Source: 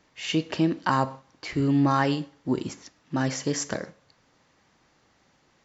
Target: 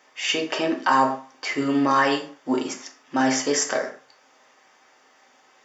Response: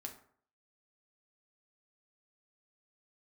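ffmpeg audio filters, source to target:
-filter_complex "[0:a]highpass=500,bandreject=frequency=4100:width=6.3[link_01];[1:a]atrim=start_sample=2205,atrim=end_sample=6615[link_02];[link_01][link_02]afir=irnorm=-1:irlink=0,asplit=2[link_03][link_04];[link_04]alimiter=limit=-24dB:level=0:latency=1,volume=3dB[link_05];[link_03][link_05]amix=inputs=2:normalize=0,volume=5dB"

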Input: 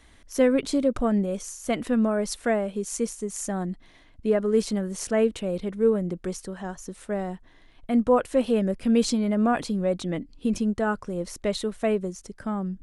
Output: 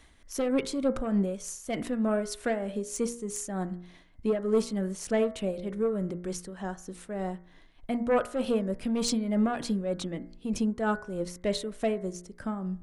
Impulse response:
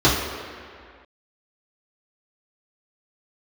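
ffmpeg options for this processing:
-af "aeval=exprs='0.335*sin(PI/2*1.58*val(0)/0.335)':channel_layout=same,tremolo=f=3.3:d=0.55,bandreject=frequency=59.1:width_type=h:width=4,bandreject=frequency=118.2:width_type=h:width=4,bandreject=frequency=177.3:width_type=h:width=4,bandreject=frequency=236.4:width_type=h:width=4,bandreject=frequency=295.5:width_type=h:width=4,bandreject=frequency=354.6:width_type=h:width=4,bandreject=frequency=413.7:width_type=h:width=4,bandreject=frequency=472.8:width_type=h:width=4,bandreject=frequency=531.9:width_type=h:width=4,bandreject=frequency=591:width_type=h:width=4,bandreject=frequency=650.1:width_type=h:width=4,bandreject=frequency=709.2:width_type=h:width=4,bandreject=frequency=768.3:width_type=h:width=4,bandreject=frequency=827.4:width_type=h:width=4,bandreject=frequency=886.5:width_type=h:width=4,bandreject=frequency=945.6:width_type=h:width=4,bandreject=frequency=1004.7:width_type=h:width=4,bandreject=frequency=1063.8:width_type=h:width=4,bandreject=frequency=1122.9:width_type=h:width=4,bandreject=frequency=1182:width_type=h:width=4,bandreject=frequency=1241.1:width_type=h:width=4,bandreject=frequency=1300.2:width_type=h:width=4,bandreject=frequency=1359.3:width_type=h:width=4,bandreject=frequency=1418.4:width_type=h:width=4,bandreject=frequency=1477.5:width_type=h:width=4,bandreject=frequency=1536.6:width_type=h:width=4,bandreject=frequency=1595.7:width_type=h:width=4,bandreject=frequency=1654.8:width_type=h:width=4,bandreject=frequency=1713.9:width_type=h:width=4,bandreject=frequency=1773:width_type=h:width=4,bandreject=frequency=1832.1:width_type=h:width=4,bandreject=frequency=1891.2:width_type=h:width=4,bandreject=frequency=1950.3:width_type=h:width=4,bandreject=frequency=2009.4:width_type=h:width=4,bandreject=frequency=2068.5:width_type=h:width=4,bandreject=frequency=2127.6:width_type=h:width=4,bandreject=frequency=2186.7:width_type=h:width=4,volume=-8dB"

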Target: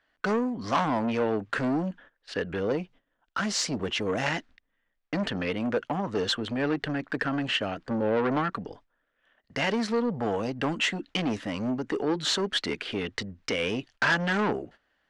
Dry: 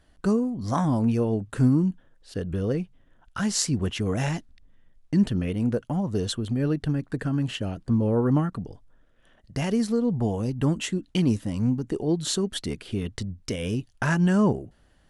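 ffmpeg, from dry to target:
ffmpeg -i in.wav -filter_complex "[0:a]asetnsamples=nb_out_samples=441:pad=0,asendcmd='2.6 equalizer g 2;4.26 equalizer g 8.5',equalizer=frequency=1800:width_type=o:width=1.7:gain=10.5,asoftclip=type=tanh:threshold=-23dB,agate=range=-15dB:threshold=-48dB:ratio=16:detection=peak,acrossover=split=250 6500:gain=0.178 1 0.0708[link_01][link_02][link_03];[link_01][link_02][link_03]amix=inputs=3:normalize=0,bandreject=frequency=360:width=12,volume=4.5dB" out.wav

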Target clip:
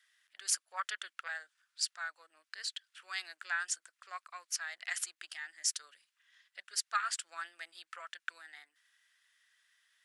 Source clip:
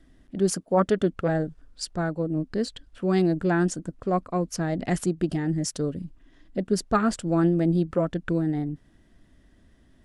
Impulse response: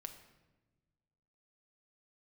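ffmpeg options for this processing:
-af "highpass=frequency=1500:width=0.5412,highpass=frequency=1500:width=1.3066"

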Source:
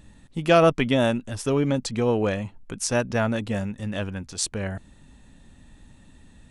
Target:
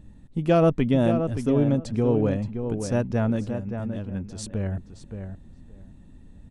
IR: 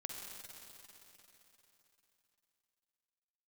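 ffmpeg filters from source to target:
-filter_complex "[0:a]asettb=1/sr,asplit=3[link_01][link_02][link_03];[link_01]atrim=end=3.444[link_04];[link_02]atrim=start=3.44:end=4.11,asetpts=PTS-STARTPTS,afade=type=in:duration=0.004:curve=qsin,afade=type=out:start_time=0.666:duration=0.004:curve=qsin,acompressor=threshold=-32dB:ratio=6[link_05];[link_03]atrim=start=4.106[link_06];[link_04][link_05]acrossfade=duration=0.004:curve1=hsin:curve2=qsin[link_07];[link_07][link_06]acrossfade=duration=0.004:curve1=qsin:curve2=hsin,tiltshelf=frequency=690:gain=7.5,asplit=2[link_08][link_09];[link_09]adelay=573,lowpass=frequency=2400:poles=1,volume=-7.5dB,asplit=2[link_10][link_11];[link_11]adelay=573,lowpass=frequency=2400:poles=1,volume=0.16,asplit=2[link_12][link_13];[link_13]adelay=573,lowpass=frequency=2400:poles=1,volume=0.16[link_14];[link_08][link_10][link_12][link_14]amix=inputs=4:normalize=0,volume=-4dB"

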